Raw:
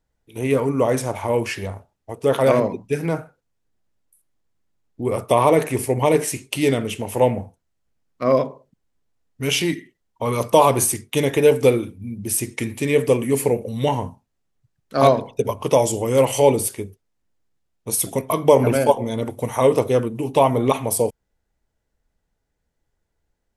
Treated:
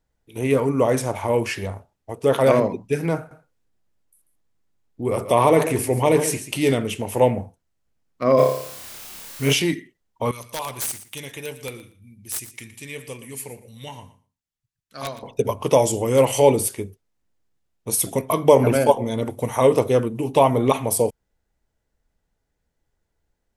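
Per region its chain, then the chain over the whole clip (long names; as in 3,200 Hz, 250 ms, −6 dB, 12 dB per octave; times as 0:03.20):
0:03.17–0:06.75: transient designer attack −2 dB, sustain +2 dB + single-tap delay 139 ms −12 dB
0:08.37–0:09.52: background noise white −42 dBFS + flutter between parallel walls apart 5 metres, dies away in 0.59 s
0:10.31–0:15.23: guitar amp tone stack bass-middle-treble 5-5-5 + wrap-around overflow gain 19 dB + repeating echo 117 ms, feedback 15%, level −15 dB
whole clip: no processing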